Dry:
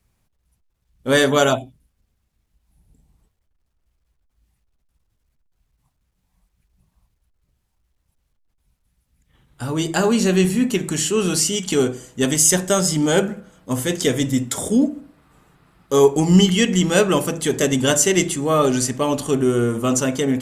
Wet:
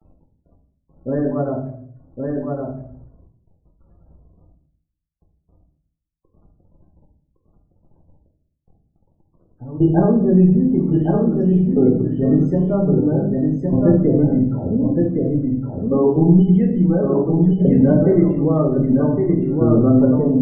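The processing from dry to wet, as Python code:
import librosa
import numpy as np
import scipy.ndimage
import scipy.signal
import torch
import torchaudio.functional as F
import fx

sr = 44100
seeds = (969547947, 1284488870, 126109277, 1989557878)

p1 = scipy.signal.sosfilt(scipy.signal.bessel(2, 700.0, 'lowpass', norm='mag', fs=sr, output='sos'), x)
p2 = fx.low_shelf(p1, sr, hz=460.0, db=8.0)
p3 = fx.over_compress(p2, sr, threshold_db=-16.0, ratio=-0.5)
p4 = p2 + (p3 * librosa.db_to_amplitude(-2.5))
p5 = fx.wow_flutter(p4, sr, seeds[0], rate_hz=2.1, depth_cents=29.0)
p6 = fx.tremolo_shape(p5, sr, shape='saw_down', hz=0.51, depth_pct=85)
p7 = fx.quant_dither(p6, sr, seeds[1], bits=8, dither='none')
p8 = fx.spec_topn(p7, sr, count=32)
p9 = p8 + fx.echo_single(p8, sr, ms=1113, db=-3.5, dry=0)
p10 = fx.room_shoebox(p9, sr, seeds[2], volume_m3=97.0, walls='mixed', distance_m=0.76)
p11 = fx.end_taper(p10, sr, db_per_s=170.0)
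y = p11 * librosa.db_to_amplitude(-5.0)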